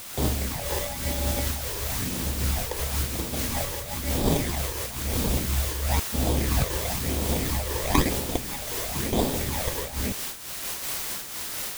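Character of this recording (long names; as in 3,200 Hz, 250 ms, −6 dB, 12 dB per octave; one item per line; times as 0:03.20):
aliases and images of a low sample rate 1,400 Hz, jitter 0%
phaser sweep stages 12, 1 Hz, lowest notch 220–2,100 Hz
a quantiser's noise floor 6 bits, dither triangular
amplitude modulation by smooth noise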